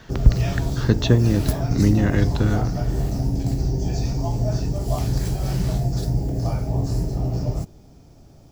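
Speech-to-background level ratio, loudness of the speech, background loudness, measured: 2.5 dB, -22.0 LUFS, -24.5 LUFS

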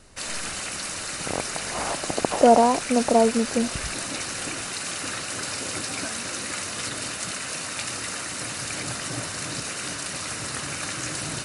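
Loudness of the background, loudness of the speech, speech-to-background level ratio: -29.0 LUFS, -22.5 LUFS, 6.5 dB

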